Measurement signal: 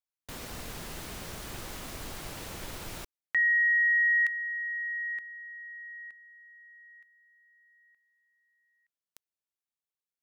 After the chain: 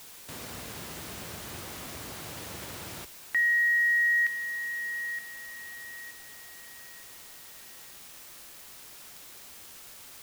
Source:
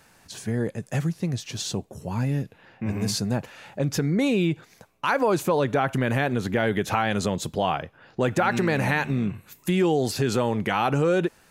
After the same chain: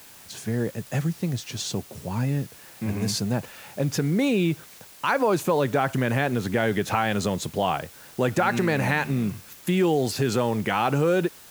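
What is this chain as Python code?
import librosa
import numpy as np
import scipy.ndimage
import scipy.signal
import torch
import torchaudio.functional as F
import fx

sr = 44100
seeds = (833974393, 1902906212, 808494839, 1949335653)

y = scipy.signal.sosfilt(scipy.signal.butter(4, 65.0, 'highpass', fs=sr, output='sos'), x)
y = fx.quant_dither(y, sr, seeds[0], bits=8, dither='triangular')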